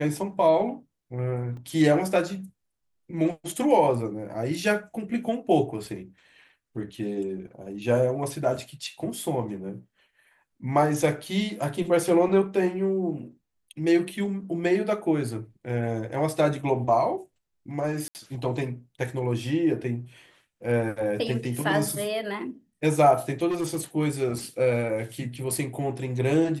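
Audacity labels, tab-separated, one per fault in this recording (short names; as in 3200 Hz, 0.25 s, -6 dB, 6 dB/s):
1.570000	1.570000	gap 2.2 ms
18.080000	18.150000	gap 69 ms
23.480000	23.810000	clipped -23.5 dBFS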